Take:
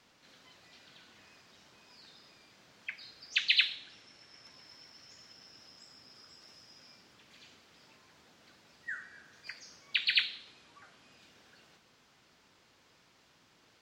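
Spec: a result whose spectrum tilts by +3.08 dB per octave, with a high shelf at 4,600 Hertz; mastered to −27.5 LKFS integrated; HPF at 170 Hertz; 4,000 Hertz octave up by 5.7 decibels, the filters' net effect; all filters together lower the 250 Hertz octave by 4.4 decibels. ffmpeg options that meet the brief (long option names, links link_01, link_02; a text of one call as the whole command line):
ffmpeg -i in.wav -af "highpass=170,equalizer=frequency=250:width_type=o:gain=-4.5,equalizer=frequency=4000:width_type=o:gain=3.5,highshelf=frequency=4600:gain=8,volume=-0.5dB" out.wav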